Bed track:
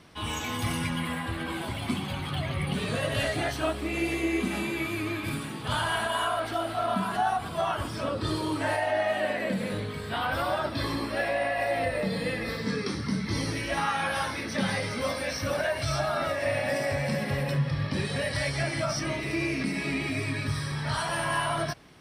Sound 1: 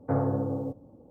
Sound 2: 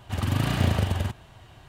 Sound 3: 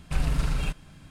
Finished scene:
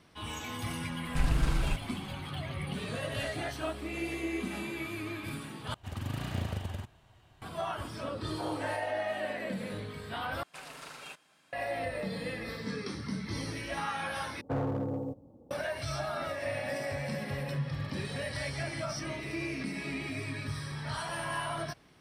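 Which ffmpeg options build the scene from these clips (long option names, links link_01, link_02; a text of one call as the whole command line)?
ffmpeg -i bed.wav -i cue0.wav -i cue1.wav -i cue2.wav -filter_complex "[3:a]asplit=2[link_01][link_02];[2:a]asplit=2[link_03][link_04];[1:a]asplit=2[link_05][link_06];[0:a]volume=-7dB[link_07];[link_05]highpass=frequency=550:width=0.5412,highpass=frequency=550:width=1.3066[link_08];[link_02]highpass=520[link_09];[link_06]asoftclip=type=hard:threshold=-24dB[link_10];[link_04]acompressor=threshold=-30dB:ratio=6:attack=3.2:release=140:knee=1:detection=peak[link_11];[link_07]asplit=4[link_12][link_13][link_14][link_15];[link_12]atrim=end=5.744[link_16];[link_03]atrim=end=1.68,asetpts=PTS-STARTPTS,volume=-11.5dB[link_17];[link_13]atrim=start=7.416:end=10.434[link_18];[link_09]atrim=end=1.1,asetpts=PTS-STARTPTS,volume=-7.5dB[link_19];[link_14]atrim=start=11.526:end=14.414[link_20];[link_10]atrim=end=1.1,asetpts=PTS-STARTPTS,volume=-3.5dB[link_21];[link_15]atrim=start=15.506[link_22];[link_01]atrim=end=1.1,asetpts=PTS-STARTPTS,volume=-2.5dB,afade=type=in:duration=0.004:curve=hsin,afade=type=out:start_time=1.096:duration=0.004:curve=hsin,adelay=1040[link_23];[link_08]atrim=end=1.1,asetpts=PTS-STARTPTS,volume=-6dB,afade=type=in:duration=0.004:curve=hsin,afade=type=out:start_time=1.096:duration=0.004:curve=hsin,adelay=8300[link_24];[link_11]atrim=end=1.68,asetpts=PTS-STARTPTS,volume=-16dB,afade=type=in:duration=0.004:curve=hsin,afade=type=out:start_time=1.676:duration=0.004:curve=hsin,adelay=17620[link_25];[link_16][link_17]acrossfade=duration=0.004:curve1=hsin:curve2=hsin[link_26];[link_26][link_18]acrossfade=duration=0.004:curve1=hsin:curve2=hsin[link_27];[link_27][link_19]acrossfade=duration=0.004:curve1=hsin:curve2=hsin[link_28];[link_28][link_20]acrossfade=duration=0.004:curve1=hsin:curve2=hsin[link_29];[link_29][link_21]acrossfade=duration=0.004:curve1=hsin:curve2=hsin[link_30];[link_30][link_22]acrossfade=duration=0.004:curve1=hsin:curve2=hsin[link_31];[link_31][link_23][link_24][link_25]amix=inputs=4:normalize=0" out.wav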